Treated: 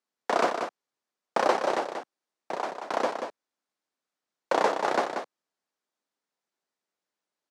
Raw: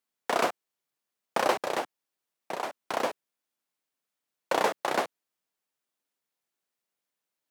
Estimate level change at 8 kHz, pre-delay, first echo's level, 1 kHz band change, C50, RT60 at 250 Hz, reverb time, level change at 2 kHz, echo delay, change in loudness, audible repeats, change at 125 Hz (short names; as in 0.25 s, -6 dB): -2.5 dB, none, -7.0 dB, +2.5 dB, none, none, none, +0.5 dB, 0.185 s, +1.5 dB, 1, -0.5 dB